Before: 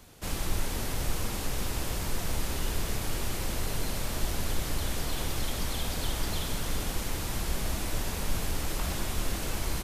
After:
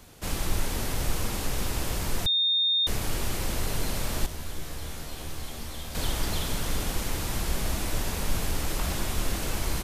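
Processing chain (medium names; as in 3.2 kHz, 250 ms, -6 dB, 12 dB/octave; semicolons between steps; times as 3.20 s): 2.26–2.87 s: bleep 3.66 kHz -23.5 dBFS; 4.26–5.95 s: feedback comb 77 Hz, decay 0.43 s, harmonics all, mix 80%; trim +2.5 dB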